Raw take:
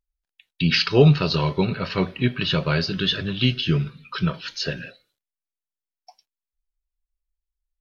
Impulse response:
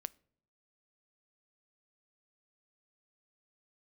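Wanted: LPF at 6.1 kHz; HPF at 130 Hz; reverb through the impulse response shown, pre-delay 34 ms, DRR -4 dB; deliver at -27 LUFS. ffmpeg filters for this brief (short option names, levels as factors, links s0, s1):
-filter_complex "[0:a]highpass=130,lowpass=6100,asplit=2[s0][s1];[1:a]atrim=start_sample=2205,adelay=34[s2];[s1][s2]afir=irnorm=-1:irlink=0,volume=2.24[s3];[s0][s3]amix=inputs=2:normalize=0,volume=0.335"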